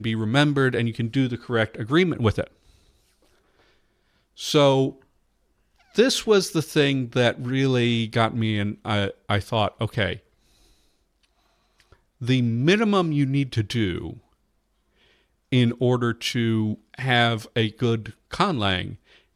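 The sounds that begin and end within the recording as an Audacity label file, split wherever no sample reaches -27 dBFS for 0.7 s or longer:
4.400000	4.900000	sound
5.980000	10.130000	sound
12.220000	14.100000	sound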